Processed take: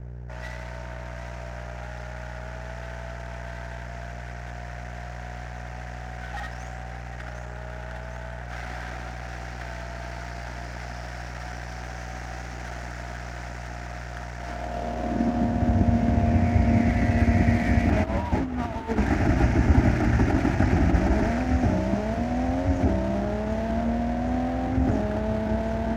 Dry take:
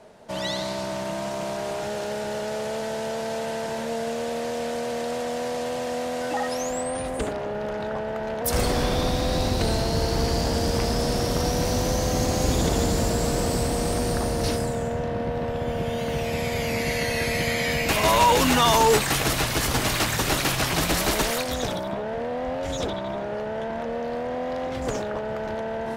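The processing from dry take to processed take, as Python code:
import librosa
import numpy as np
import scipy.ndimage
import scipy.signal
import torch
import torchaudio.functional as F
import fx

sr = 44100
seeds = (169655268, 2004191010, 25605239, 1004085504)

p1 = fx.cvsd(x, sr, bps=32000)
p2 = scipy.signal.sosfilt(scipy.signal.butter(2, 49.0, 'highpass', fs=sr, output='sos'), p1)
p3 = p2 + fx.echo_wet_highpass(p2, sr, ms=756, feedback_pct=69, hz=2600.0, wet_db=-4, dry=0)
p4 = fx.filter_sweep_highpass(p3, sr, from_hz=1300.0, to_hz=82.0, start_s=14.34, end_s=15.81, q=1.1)
p5 = fx.fixed_phaser(p4, sr, hz=720.0, stages=8)
p6 = fx.room_flutter(p5, sr, wall_m=11.1, rt60_s=0.24)
p7 = 10.0 ** (-17.0 / 20.0) * np.tanh(p6 / 10.0 ** (-17.0 / 20.0))
p8 = p6 + (p7 * librosa.db_to_amplitude(-5.0))
p9 = fx.add_hum(p8, sr, base_hz=60, snr_db=18)
p10 = fx.peak_eq(p9, sr, hz=3800.0, db=-14.0, octaves=1.8)
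p11 = fx.over_compress(p10, sr, threshold_db=-25.0, ratio=-0.5)
p12 = fx.bass_treble(p11, sr, bass_db=15, treble_db=-2)
y = np.sign(p12) * np.maximum(np.abs(p12) - 10.0 ** (-35.5 / 20.0), 0.0)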